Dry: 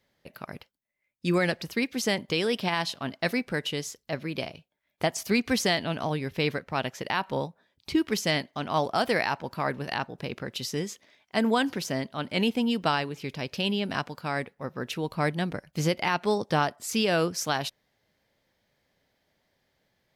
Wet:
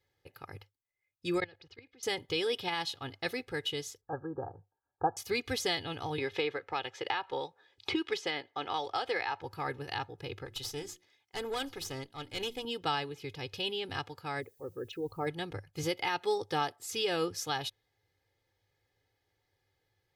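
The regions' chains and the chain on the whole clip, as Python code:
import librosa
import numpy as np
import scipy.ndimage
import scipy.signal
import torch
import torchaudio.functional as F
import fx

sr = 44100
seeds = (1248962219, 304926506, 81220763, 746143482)

y = fx.chain(x, sr, fx.lowpass(hz=4700.0, slope=24),
    fx.peak_eq(hz=120.0, db=-4.5, octaves=0.28),
    fx.level_steps(step_db=24), at=(1.4, 2.03))
y = fx.chain(y, sr, fx.brickwall_lowpass(high_hz=1700.0),
    fx.peak_eq(hz=780.0, db=9.5, octaves=1.1),
    fx.notch(hz=620.0, q=5.5), at=(4.01, 5.17))
y = fx.chain(y, sr, fx.lowpass(hz=7500.0, slope=12),
    fx.bass_treble(bass_db=-14, treble_db=-6),
    fx.band_squash(depth_pct=100), at=(6.18, 9.41))
y = fx.chain(y, sr, fx.high_shelf(hz=3800.0, db=6.5),
    fx.hum_notches(base_hz=60, count=6),
    fx.tube_stage(drive_db=22.0, bias=0.7), at=(10.45, 12.65))
y = fx.envelope_sharpen(y, sr, power=2.0, at=(14.4, 15.26), fade=0.02)
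y = fx.peak_eq(y, sr, hz=3200.0, db=-7.0, octaves=1.7, at=(14.4, 15.26), fade=0.02)
y = fx.dmg_noise_colour(y, sr, seeds[0], colour='violet', level_db=-62.0, at=(14.4, 15.26), fade=0.02)
y = fx.chain(y, sr, fx.highpass(hz=150.0, slope=12),
    fx.high_shelf(hz=11000.0, db=6.5), at=(15.83, 16.84))
y = fx.peak_eq(y, sr, hz=100.0, db=13.0, octaves=0.37)
y = y + 0.82 * np.pad(y, (int(2.4 * sr / 1000.0), 0))[:len(y)]
y = fx.dynamic_eq(y, sr, hz=3500.0, q=3.6, threshold_db=-48.0, ratio=4.0, max_db=6)
y = y * librosa.db_to_amplitude(-9.0)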